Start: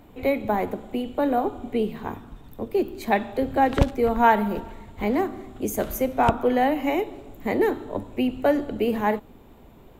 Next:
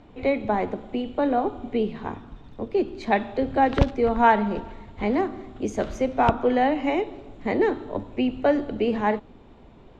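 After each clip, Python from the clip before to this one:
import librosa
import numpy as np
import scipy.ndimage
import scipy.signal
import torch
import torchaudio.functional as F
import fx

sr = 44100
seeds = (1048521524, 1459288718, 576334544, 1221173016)

y = scipy.signal.sosfilt(scipy.signal.butter(4, 5800.0, 'lowpass', fs=sr, output='sos'), x)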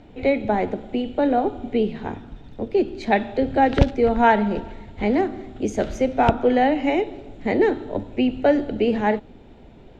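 y = fx.peak_eq(x, sr, hz=1100.0, db=-11.0, octaves=0.33)
y = F.gain(torch.from_numpy(y), 3.5).numpy()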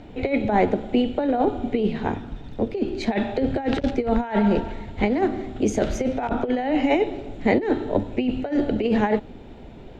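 y = fx.over_compress(x, sr, threshold_db=-21.0, ratio=-0.5)
y = F.gain(torch.from_numpy(y), 1.5).numpy()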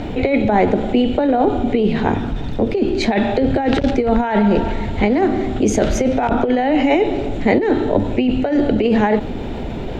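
y = fx.env_flatten(x, sr, amount_pct=50)
y = F.gain(torch.from_numpy(y), 4.0).numpy()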